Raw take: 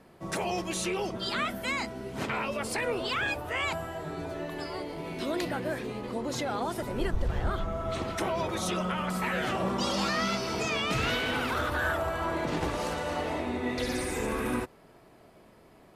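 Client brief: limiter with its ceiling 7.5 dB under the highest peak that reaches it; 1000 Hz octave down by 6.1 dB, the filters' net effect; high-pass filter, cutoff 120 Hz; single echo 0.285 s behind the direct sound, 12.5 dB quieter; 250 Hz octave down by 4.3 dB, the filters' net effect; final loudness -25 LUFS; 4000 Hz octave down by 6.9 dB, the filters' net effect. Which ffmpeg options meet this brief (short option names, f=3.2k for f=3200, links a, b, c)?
-af "highpass=120,equalizer=f=250:t=o:g=-5,equalizer=f=1k:t=o:g=-7.5,equalizer=f=4k:t=o:g=-9,alimiter=level_in=5dB:limit=-24dB:level=0:latency=1,volume=-5dB,aecho=1:1:285:0.237,volume=13dB"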